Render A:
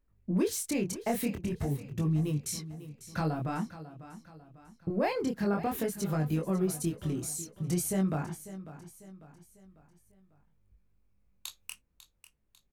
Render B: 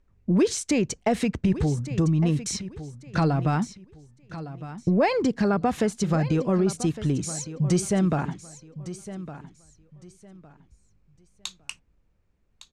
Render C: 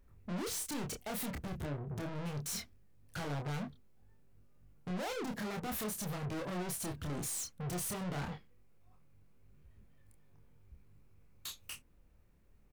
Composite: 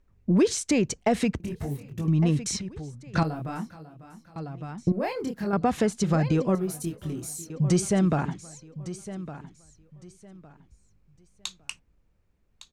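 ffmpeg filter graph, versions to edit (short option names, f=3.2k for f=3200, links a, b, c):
-filter_complex "[0:a]asplit=4[a][b][c][d];[1:a]asplit=5[e][f][g][h][i];[e]atrim=end=1.402[j];[a]atrim=start=1.398:end=2.082[k];[f]atrim=start=2.078:end=3.232[l];[b]atrim=start=3.228:end=4.362[m];[g]atrim=start=4.358:end=4.922[n];[c]atrim=start=4.918:end=5.532[o];[h]atrim=start=5.528:end=6.552[p];[d]atrim=start=6.548:end=7.502[q];[i]atrim=start=7.498[r];[j][k]acrossfade=d=0.004:c1=hsin:c2=hsin[s];[s][l]acrossfade=d=0.004:c1=hsin:c2=hsin[t];[t][m]acrossfade=d=0.004:c1=hsin:c2=hsin[u];[u][n]acrossfade=d=0.004:c1=hsin:c2=hsin[v];[v][o]acrossfade=d=0.004:c1=hsin:c2=hsin[w];[w][p]acrossfade=d=0.004:c1=hsin:c2=hsin[x];[x][q]acrossfade=d=0.004:c1=hsin:c2=hsin[y];[y][r]acrossfade=d=0.004:c1=hsin:c2=hsin"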